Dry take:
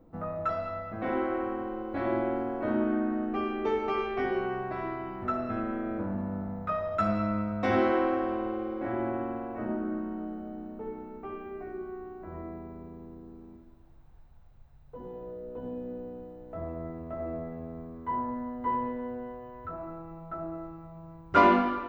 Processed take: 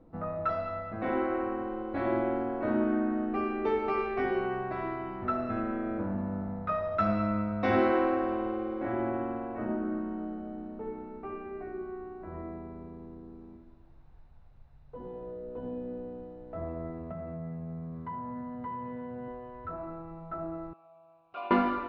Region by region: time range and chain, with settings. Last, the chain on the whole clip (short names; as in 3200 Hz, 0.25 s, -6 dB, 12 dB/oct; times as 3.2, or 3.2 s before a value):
17.11–19.28 HPF 110 Hz + resonant low shelf 230 Hz +7 dB, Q 3 + compressor 5:1, threshold -35 dBFS
20.73–21.51 bell 3700 Hz +14 dB 1.7 oct + compressor 2:1, threshold -34 dBFS + vowel filter a
whole clip: LPF 5000 Hz 24 dB/oct; notch 3200 Hz, Q 20